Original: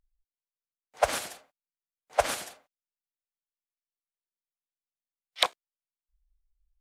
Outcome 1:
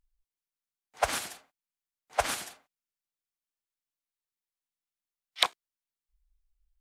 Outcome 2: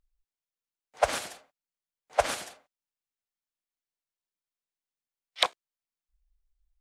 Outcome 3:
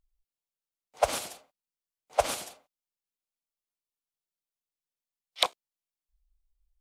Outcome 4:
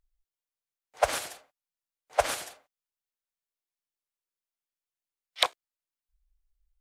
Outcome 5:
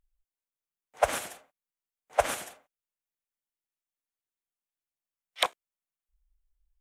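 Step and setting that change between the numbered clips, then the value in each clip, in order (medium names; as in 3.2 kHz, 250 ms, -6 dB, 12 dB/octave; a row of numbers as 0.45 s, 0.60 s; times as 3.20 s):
peaking EQ, frequency: 550 Hz, 14 kHz, 1.7 kHz, 210 Hz, 4.6 kHz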